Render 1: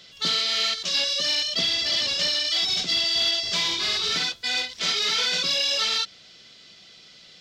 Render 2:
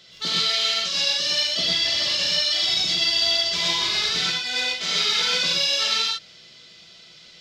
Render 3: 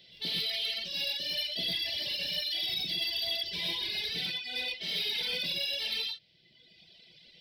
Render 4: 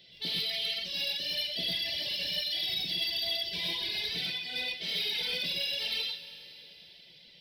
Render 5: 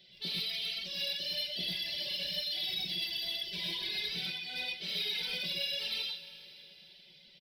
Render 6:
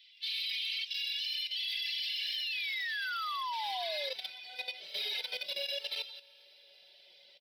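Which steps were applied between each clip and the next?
reverb whose tail is shaped and stops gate 150 ms rising, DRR −2.5 dB; level −2.5 dB
reverb reduction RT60 1.3 s; soft clipping −20 dBFS, distortion −16 dB; phaser with its sweep stopped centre 3,000 Hz, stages 4; level −4.5 dB
dense smooth reverb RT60 3.9 s, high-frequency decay 0.95×, DRR 10 dB
comb filter 5.3 ms, depth 60%; level −4.5 dB
sound drawn into the spectrogram fall, 0:02.33–0:04.14, 510–3,200 Hz −37 dBFS; high-pass filter sweep 2,400 Hz → 580 Hz, 0:02.01–0:04.68; output level in coarse steps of 12 dB

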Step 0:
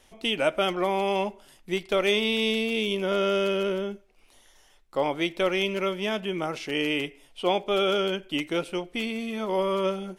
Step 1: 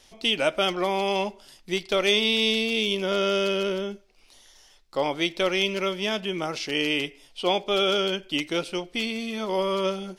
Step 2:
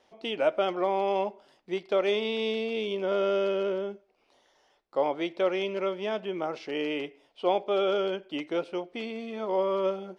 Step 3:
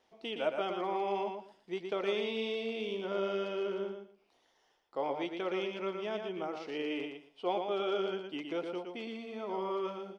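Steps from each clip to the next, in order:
parametric band 4,800 Hz +10.5 dB 1 octave
resonant band-pass 600 Hz, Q 0.82
notch filter 570 Hz, Q 12; on a send: repeating echo 116 ms, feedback 20%, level −5.5 dB; on the sum: level −6.5 dB

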